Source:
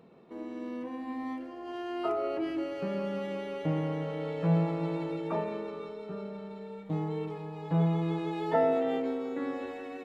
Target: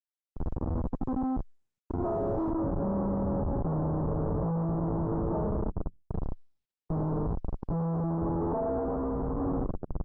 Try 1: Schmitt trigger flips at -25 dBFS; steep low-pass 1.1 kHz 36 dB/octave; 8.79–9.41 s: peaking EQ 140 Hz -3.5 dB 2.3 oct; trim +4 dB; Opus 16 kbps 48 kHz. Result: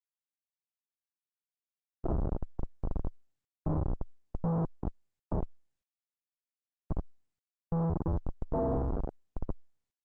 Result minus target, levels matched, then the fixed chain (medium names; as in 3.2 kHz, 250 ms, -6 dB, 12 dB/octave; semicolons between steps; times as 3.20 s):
Schmitt trigger: distortion +7 dB
Schmitt trigger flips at -33 dBFS; steep low-pass 1.1 kHz 36 dB/octave; 8.79–9.41 s: peaking EQ 140 Hz -3.5 dB 2.3 oct; trim +4 dB; Opus 16 kbps 48 kHz